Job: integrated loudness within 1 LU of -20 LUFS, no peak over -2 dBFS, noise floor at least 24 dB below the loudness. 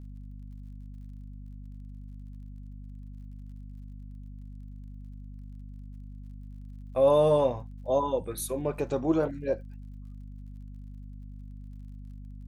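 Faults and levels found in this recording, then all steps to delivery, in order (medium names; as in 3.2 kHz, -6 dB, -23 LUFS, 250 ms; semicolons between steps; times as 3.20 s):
tick rate 39 per s; hum 50 Hz; highest harmonic 250 Hz; hum level -40 dBFS; loudness -27.0 LUFS; peak level -12.5 dBFS; loudness target -20.0 LUFS
-> de-click; hum notches 50/100/150/200/250 Hz; trim +7 dB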